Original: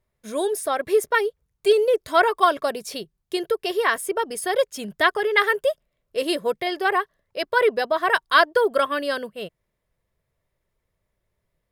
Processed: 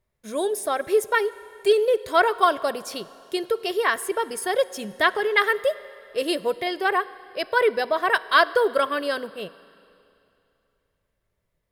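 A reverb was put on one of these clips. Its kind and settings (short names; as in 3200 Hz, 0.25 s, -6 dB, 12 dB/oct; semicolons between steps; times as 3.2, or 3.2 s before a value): Schroeder reverb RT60 2.7 s, combs from 33 ms, DRR 17.5 dB; gain -1 dB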